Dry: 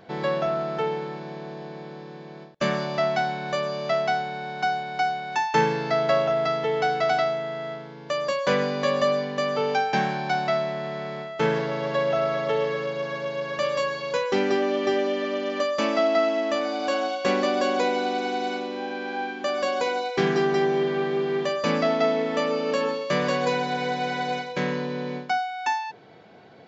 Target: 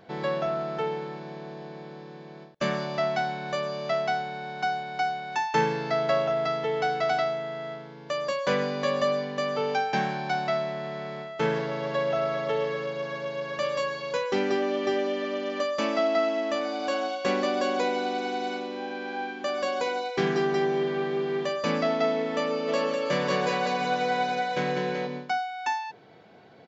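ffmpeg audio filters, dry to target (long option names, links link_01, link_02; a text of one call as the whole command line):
ffmpeg -i in.wav -filter_complex "[0:a]asplit=3[link_01][link_02][link_03];[link_01]afade=type=out:start_time=22.67:duration=0.02[link_04];[link_02]aecho=1:1:200|380|542|687.8|819:0.631|0.398|0.251|0.158|0.1,afade=type=in:start_time=22.67:duration=0.02,afade=type=out:start_time=25.06:duration=0.02[link_05];[link_03]afade=type=in:start_time=25.06:duration=0.02[link_06];[link_04][link_05][link_06]amix=inputs=3:normalize=0,volume=-3dB" out.wav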